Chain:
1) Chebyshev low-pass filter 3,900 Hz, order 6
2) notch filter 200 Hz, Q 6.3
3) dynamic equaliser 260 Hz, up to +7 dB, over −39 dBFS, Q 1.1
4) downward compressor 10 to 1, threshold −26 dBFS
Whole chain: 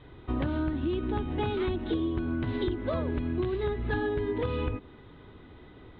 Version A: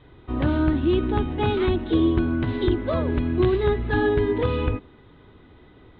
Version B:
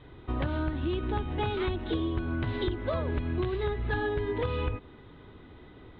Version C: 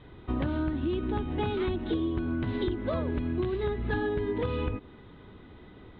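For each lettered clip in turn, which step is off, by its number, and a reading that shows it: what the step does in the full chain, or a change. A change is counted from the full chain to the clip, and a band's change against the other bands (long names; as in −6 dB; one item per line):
4, average gain reduction 5.5 dB
3, change in momentary loudness spread +19 LU
2, change in momentary loudness spread +3 LU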